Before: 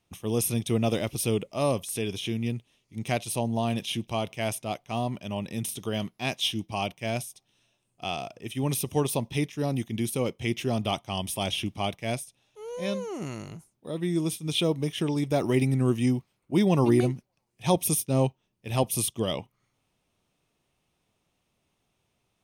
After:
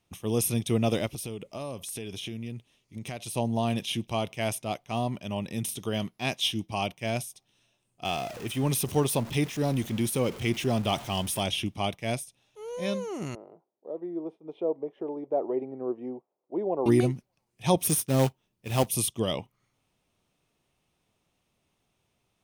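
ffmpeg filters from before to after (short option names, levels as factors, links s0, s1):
-filter_complex "[0:a]asettb=1/sr,asplit=3[s0][s1][s2];[s0]atrim=end=1.064[s3];[s1]atrim=start=1.06:end=3.36,asetpts=PTS-STARTPTS,afade=t=in:d=0.004:c=qsin,afade=t=out:st=2.296:d=0.004:c=qsin,acompressor=threshold=0.0224:ratio=6:attack=3.2:release=140:knee=1:detection=peak[s4];[s2]atrim=start=3.356[s5];[s3][s4]acrossfade=d=0.004:c1=hsin:c2=qsin[s6];[s6][s5]acrossfade=d=0.004:c1=qsin:c2=hsin,asettb=1/sr,asplit=3[s7][s8][s9];[s7]atrim=end=8.054[s10];[s8]atrim=start=8.05:end=11.41,asetpts=PTS-STARTPTS,afade=t=in:d=0.004:c=qsin,afade=t=out:st=3.356:d=0.004:c=qsin,aeval=exprs='val(0)+0.5*0.0141*sgn(val(0))':c=same[s11];[s9]atrim=start=11.406[s12];[s10][s11]acrossfade=d=0.004:c1=hsin:c2=qsin[s13];[s13][s12]acrossfade=d=0.004:c1=qsin:c2=hsin,asettb=1/sr,asplit=3[s14][s15][s16];[s14]atrim=end=13.354[s17];[s15]atrim=start=13.35:end=16.86,asetpts=PTS-STARTPTS,afade=t=in:d=0.004:c=qsin,afade=t=out:st=3.506:d=0.004:c=qsin,asuperpass=centerf=560:order=4:qfactor=1.2[s18];[s16]atrim=start=16.856[s19];[s17][s18]acrossfade=d=0.004:c1=hsin:c2=qsin[s20];[s20][s19]acrossfade=d=0.004:c1=qsin:c2=hsin,asettb=1/sr,asplit=3[s21][s22][s23];[s21]atrim=end=17.804[s24];[s22]atrim=start=17.8:end=18.89,asetpts=PTS-STARTPTS,afade=t=in:d=0.004:c=qsin,afade=t=out:st=1.086:d=0.004:c=qsin,acrusher=bits=3:mode=log:mix=0:aa=0.000001[s25];[s23]atrim=start=18.886[s26];[s24][s25]acrossfade=d=0.004:c1=hsin:c2=qsin[s27];[s27][s26]acrossfade=d=0.004:c1=qsin:c2=hsin"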